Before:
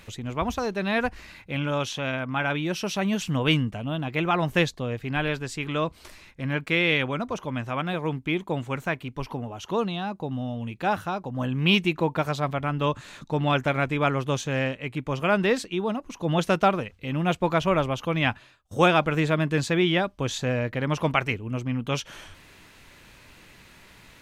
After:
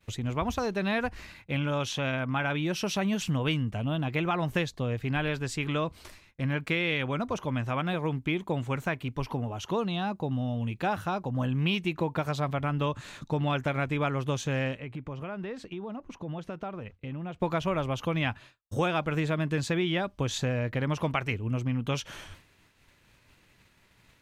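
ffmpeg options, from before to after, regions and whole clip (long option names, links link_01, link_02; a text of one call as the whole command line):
ffmpeg -i in.wav -filter_complex "[0:a]asettb=1/sr,asplit=3[link_01][link_02][link_03];[link_01]atrim=end=14.804[link_04];[link_02]atrim=start=14.8:end=17.4,asetpts=PTS-STARTPTS,afade=type=in:duration=0.004:curve=qsin,afade=type=out:start_time=2.596:duration=0.004:curve=qsin,lowpass=frequency=1800:poles=1,acompressor=threshold=-36dB:ratio=4:attack=3.2:release=140:knee=1:detection=peak[link_05];[link_03]atrim=start=17.396[link_06];[link_04][link_05]acrossfade=duration=0.004:curve1=hsin:curve2=qsin[link_07];[link_07][link_06]acrossfade=duration=0.004:curve1=qsin:curve2=hsin,equalizer=frequency=100:width_type=o:width=1.1:gain=4.5,agate=range=-33dB:threshold=-41dB:ratio=3:detection=peak,acompressor=threshold=-25dB:ratio=4" out.wav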